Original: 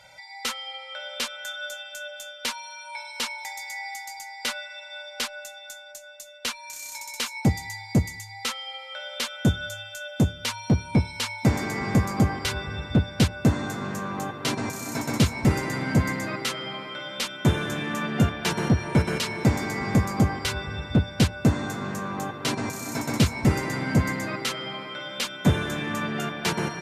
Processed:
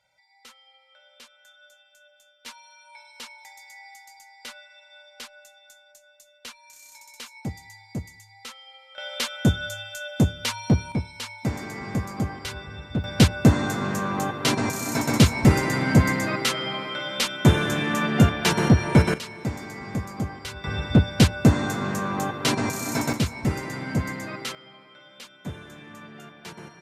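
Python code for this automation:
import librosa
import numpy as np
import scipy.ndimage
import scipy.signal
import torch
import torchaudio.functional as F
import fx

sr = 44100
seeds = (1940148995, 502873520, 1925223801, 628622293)

y = fx.gain(x, sr, db=fx.steps((0.0, -19.5), (2.46, -11.0), (8.98, 1.5), (10.92, -6.0), (13.04, 4.5), (19.14, -8.0), (20.64, 4.0), (23.13, -4.0), (24.55, -15.0)))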